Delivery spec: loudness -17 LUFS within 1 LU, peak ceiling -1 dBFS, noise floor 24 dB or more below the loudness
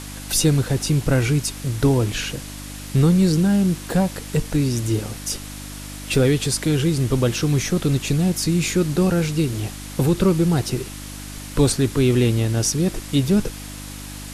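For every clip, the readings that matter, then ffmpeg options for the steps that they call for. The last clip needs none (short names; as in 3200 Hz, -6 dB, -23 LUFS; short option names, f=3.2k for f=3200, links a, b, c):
hum 50 Hz; harmonics up to 300 Hz; hum level -34 dBFS; noise floor -34 dBFS; noise floor target -45 dBFS; loudness -20.5 LUFS; peak -6.5 dBFS; loudness target -17.0 LUFS
-> -af "bandreject=f=50:t=h:w=4,bandreject=f=100:t=h:w=4,bandreject=f=150:t=h:w=4,bandreject=f=200:t=h:w=4,bandreject=f=250:t=h:w=4,bandreject=f=300:t=h:w=4"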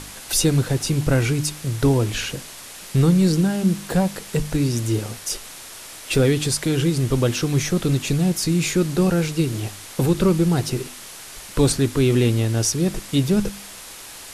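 hum none; noise floor -39 dBFS; noise floor target -45 dBFS
-> -af "afftdn=nr=6:nf=-39"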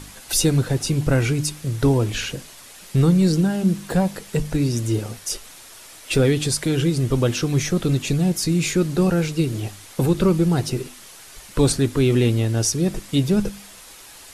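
noise floor -43 dBFS; noise floor target -45 dBFS
-> -af "afftdn=nr=6:nf=-43"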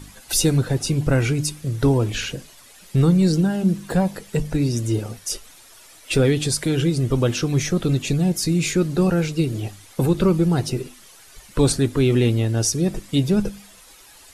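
noise floor -47 dBFS; loudness -21.0 LUFS; peak -7.0 dBFS; loudness target -17.0 LUFS
-> -af "volume=4dB"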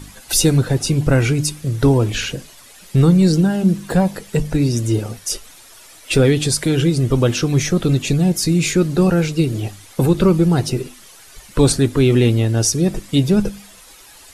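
loudness -17.0 LUFS; peak -3.0 dBFS; noise floor -43 dBFS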